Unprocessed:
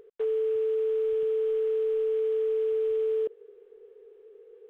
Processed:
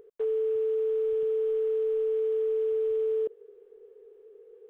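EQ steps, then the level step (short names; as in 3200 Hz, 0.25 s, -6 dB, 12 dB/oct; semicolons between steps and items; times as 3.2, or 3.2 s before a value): bell 2800 Hz -5.5 dB 2.4 oct; 0.0 dB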